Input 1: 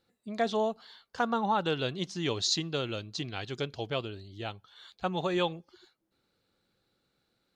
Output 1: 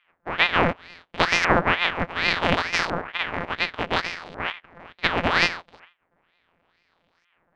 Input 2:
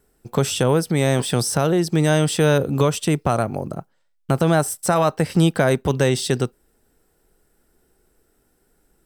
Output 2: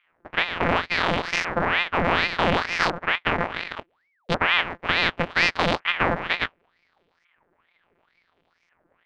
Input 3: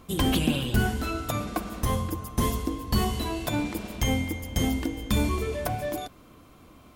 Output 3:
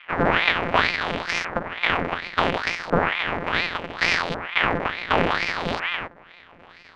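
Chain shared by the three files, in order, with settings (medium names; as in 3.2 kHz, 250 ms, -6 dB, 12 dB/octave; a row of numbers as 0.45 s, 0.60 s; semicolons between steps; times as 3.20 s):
sorted samples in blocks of 256 samples; LFO low-pass saw up 0.69 Hz 990–3700 Hz; ring modulator with a swept carrier 1.3 kHz, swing 75%, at 2.2 Hz; normalise loudness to -23 LUFS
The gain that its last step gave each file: +10.5 dB, -2.5 dB, +5.5 dB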